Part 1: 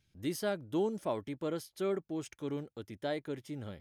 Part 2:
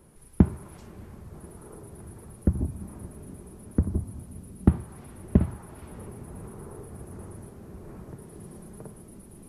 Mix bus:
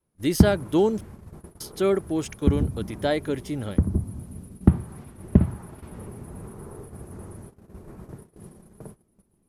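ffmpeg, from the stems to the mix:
ffmpeg -i stem1.wav -i stem2.wav -filter_complex "[0:a]dynaudnorm=framelen=120:gausssize=3:maxgain=9.5dB,volume=2dB,asplit=3[link_01][link_02][link_03];[link_01]atrim=end=1.01,asetpts=PTS-STARTPTS,afade=type=out:start_time=1.006:duration=0.004:curve=hsin[link_04];[link_02]atrim=start=1.01:end=1.6,asetpts=PTS-STARTPTS,volume=0[link_05];[link_03]atrim=start=1.6,asetpts=PTS-STARTPTS,afade=type=in:duration=0.004:curve=hsin[link_06];[link_04][link_05][link_06]concat=n=3:v=0:a=1[link_07];[1:a]adynamicequalizer=threshold=0.0141:dfrequency=150:dqfactor=0.86:tfrequency=150:tqfactor=0.86:attack=5:release=100:ratio=0.375:range=2:mode=boostabove:tftype=bell,volume=1.5dB[link_08];[link_07][link_08]amix=inputs=2:normalize=0,agate=range=-22dB:threshold=-41dB:ratio=16:detection=peak" out.wav

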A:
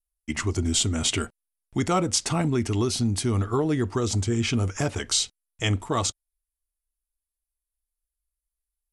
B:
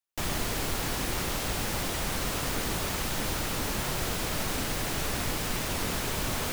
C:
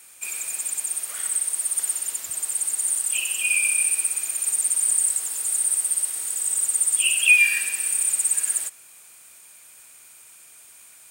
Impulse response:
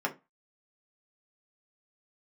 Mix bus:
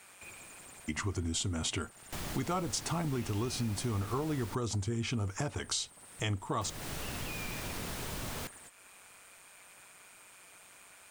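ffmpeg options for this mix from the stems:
-filter_complex "[0:a]equalizer=frequency=980:width=1.5:gain=5.5,adelay=600,volume=-1.5dB[link_01];[1:a]adelay=1950,volume=-7dB,asplit=3[link_02][link_03][link_04];[link_02]atrim=end=4.55,asetpts=PTS-STARTPTS,afade=type=out:start_time=4.546:duration=0.004:curve=hsin[link_05];[link_03]atrim=start=4.55:end=6.61,asetpts=PTS-STARTPTS,volume=0[link_06];[link_04]atrim=start=6.61,asetpts=PTS-STARTPTS,afade=type=in:duration=0.004:curve=hsin[link_07];[link_05][link_06][link_07]concat=n=3:v=0:a=1[link_08];[2:a]acrossover=split=150[link_09][link_10];[link_10]acompressor=threshold=-34dB:ratio=3[link_11];[link_09][link_11]amix=inputs=2:normalize=0,tremolo=f=190:d=0.71,asplit=2[link_12][link_13];[link_13]highpass=frequency=720:poles=1,volume=29dB,asoftclip=type=tanh:threshold=-18.5dB[link_14];[link_12][link_14]amix=inputs=2:normalize=0,lowpass=frequency=1000:poles=1,volume=-6dB,volume=-10dB[link_15];[link_01][link_08][link_15]amix=inputs=3:normalize=0,equalizer=frequency=130:width_type=o:width=1.3:gain=3,acompressor=threshold=-36dB:ratio=2.5"

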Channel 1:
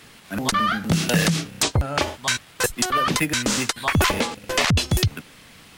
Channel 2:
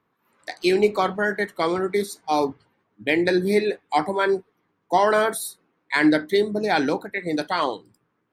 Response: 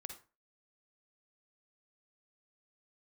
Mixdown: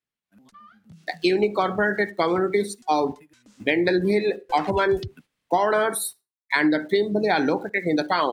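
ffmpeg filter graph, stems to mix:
-filter_complex "[0:a]agate=range=-11dB:threshold=-37dB:ratio=16:detection=peak,acompressor=threshold=-21dB:ratio=4,volume=-8dB,afade=type=in:start_time=4.04:duration=0.66:silence=0.223872[link_01];[1:a]aeval=exprs='val(0)*gte(abs(val(0)),0.00708)':channel_layout=same,adelay=600,volume=1.5dB,asplit=2[link_02][link_03];[link_03]volume=-3.5dB[link_04];[2:a]atrim=start_sample=2205[link_05];[link_04][link_05]afir=irnorm=-1:irlink=0[link_06];[link_01][link_02][link_06]amix=inputs=3:normalize=0,afftdn=noise_reduction=13:noise_floor=-32,acompressor=threshold=-17dB:ratio=6"

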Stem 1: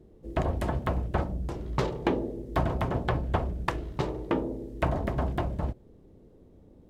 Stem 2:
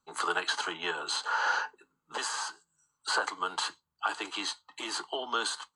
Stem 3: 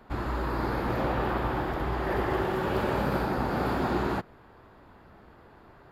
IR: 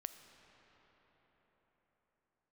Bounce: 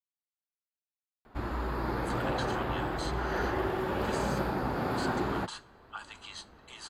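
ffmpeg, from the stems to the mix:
-filter_complex "[1:a]highpass=860,adelay=1900,volume=-12dB,asplit=2[link_01][link_02];[link_02]volume=-8dB[link_03];[2:a]flanger=delay=2.6:depth=5.8:regen=-69:speed=0.4:shape=triangular,adelay=1250,volume=1dB[link_04];[3:a]atrim=start_sample=2205[link_05];[link_03][link_05]afir=irnorm=-1:irlink=0[link_06];[link_01][link_04][link_06]amix=inputs=3:normalize=0"

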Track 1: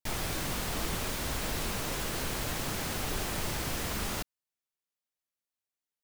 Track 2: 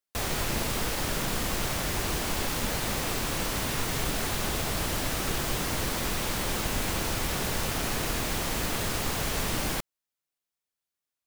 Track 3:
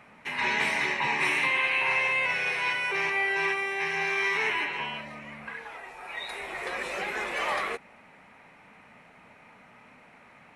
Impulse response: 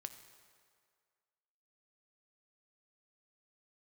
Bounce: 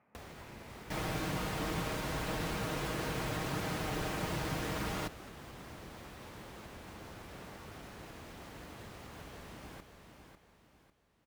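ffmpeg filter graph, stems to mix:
-filter_complex "[0:a]aecho=1:1:6.4:0.47,adelay=850,volume=-0.5dB[link_01];[1:a]volume=-6.5dB,asplit=2[link_02][link_03];[link_03]volume=-18.5dB[link_04];[2:a]highshelf=frequency=2100:gain=-10.5,volume=-14.5dB[link_05];[link_02][link_05]amix=inputs=2:normalize=0,acompressor=threshold=-45dB:ratio=5,volume=0dB[link_06];[link_04]aecho=0:1:548|1096|1644|2192|2740:1|0.37|0.137|0.0507|0.0187[link_07];[link_01][link_06][link_07]amix=inputs=3:normalize=0,highpass=50,highshelf=frequency=3700:gain=-12"

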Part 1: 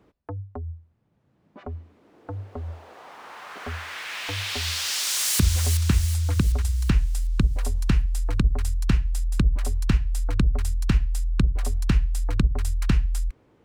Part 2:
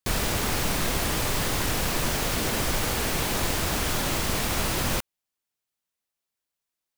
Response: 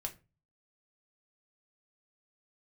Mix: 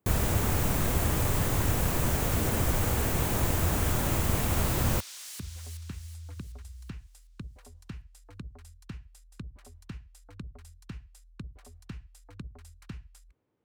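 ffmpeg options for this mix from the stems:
-filter_complex "[0:a]highpass=frequency=61:width=0.5412,highpass=frequency=61:width=1.3066,volume=-19dB[link_01];[1:a]highshelf=frequency=2300:gain=-10.5,aexciter=amount=3.5:drive=2.1:freq=6600,equalizer=frequency=88:width_type=o:width=1.3:gain=8.5,volume=-2dB[link_02];[link_01][link_02]amix=inputs=2:normalize=0"

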